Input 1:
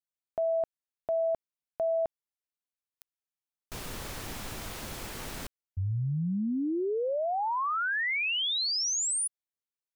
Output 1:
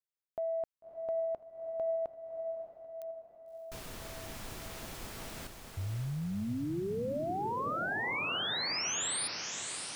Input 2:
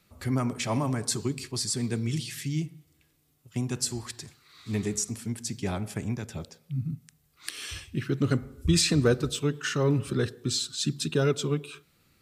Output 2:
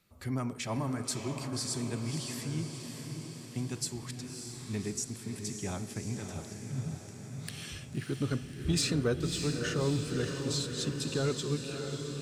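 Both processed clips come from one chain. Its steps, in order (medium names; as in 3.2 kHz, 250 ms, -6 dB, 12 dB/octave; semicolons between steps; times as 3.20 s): saturation -13 dBFS; echo that smears into a reverb 603 ms, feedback 61%, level -6 dB; trim -6 dB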